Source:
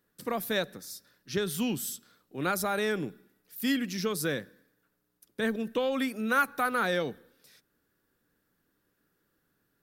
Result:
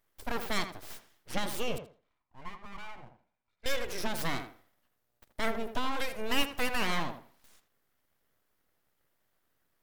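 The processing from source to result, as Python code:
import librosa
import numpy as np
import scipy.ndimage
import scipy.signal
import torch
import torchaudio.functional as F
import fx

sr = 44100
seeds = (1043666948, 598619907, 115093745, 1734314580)

y = fx.formant_cascade(x, sr, vowel='e', at=(1.78, 3.66))
y = np.abs(y)
y = fx.echo_tape(y, sr, ms=81, feedback_pct=24, wet_db=-7.0, lp_hz=2000.0, drive_db=16.0, wow_cents=10)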